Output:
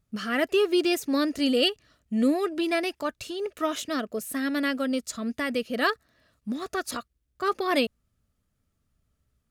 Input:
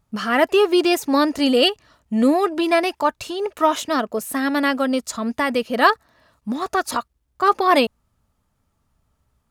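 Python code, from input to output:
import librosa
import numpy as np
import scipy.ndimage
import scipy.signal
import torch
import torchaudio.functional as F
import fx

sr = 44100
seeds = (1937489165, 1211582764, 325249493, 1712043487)

y = fx.peak_eq(x, sr, hz=910.0, db=-13.0, octaves=0.65)
y = y * librosa.db_to_amplitude(-5.5)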